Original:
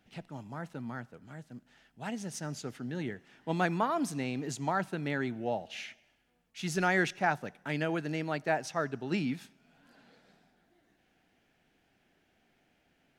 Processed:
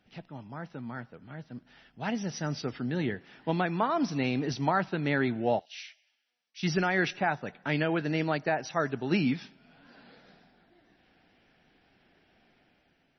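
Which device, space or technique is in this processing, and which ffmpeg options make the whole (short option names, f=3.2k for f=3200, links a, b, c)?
low-bitrate web radio: -filter_complex "[0:a]asettb=1/sr,asplit=3[a][b][c];[a]atrim=end=5.594[d];[b]atrim=start=5.59:end=6.63,asetpts=PTS-STARTPTS,afade=t=in:d=0.004:c=qsin,afade=t=out:st=1.036:d=0.004:c=qsin,aderivative[e];[c]atrim=start=6.626[f];[d][e]acrossfade=d=0.004:c1=hsin:c2=qsin[g];[g][f]acrossfade=d=0.004:c1=qsin:c2=hsin,dynaudnorm=f=890:g=3:m=6.5dB,alimiter=limit=-15dB:level=0:latency=1:release=428" -ar 24000 -c:a libmp3lame -b:a 24k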